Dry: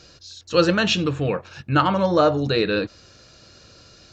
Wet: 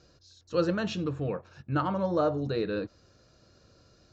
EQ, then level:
high-frequency loss of the air 69 metres
parametric band 2,800 Hz −9 dB 1.7 octaves
notch filter 840 Hz, Q 26
−8.0 dB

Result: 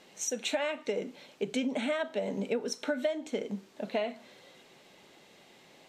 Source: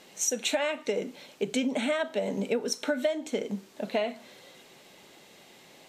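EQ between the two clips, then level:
high-shelf EQ 8,200 Hz −9 dB
−3.0 dB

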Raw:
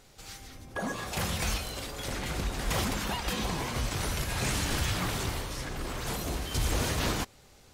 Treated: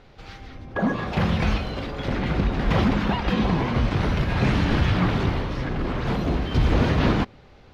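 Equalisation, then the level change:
dynamic equaliser 200 Hz, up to +6 dB, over −48 dBFS, Q 0.86
high-frequency loss of the air 300 metres
+8.5 dB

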